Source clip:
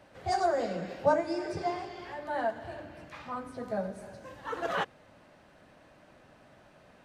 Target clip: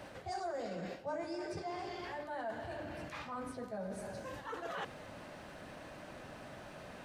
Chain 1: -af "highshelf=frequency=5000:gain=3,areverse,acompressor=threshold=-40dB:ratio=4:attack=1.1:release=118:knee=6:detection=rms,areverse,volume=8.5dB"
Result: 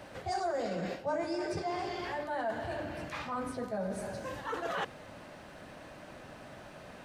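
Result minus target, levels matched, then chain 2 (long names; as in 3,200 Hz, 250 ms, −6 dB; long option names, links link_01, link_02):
downward compressor: peak gain reduction −6.5 dB
-af "highshelf=frequency=5000:gain=3,areverse,acompressor=threshold=-48.5dB:ratio=4:attack=1.1:release=118:knee=6:detection=rms,areverse,volume=8.5dB"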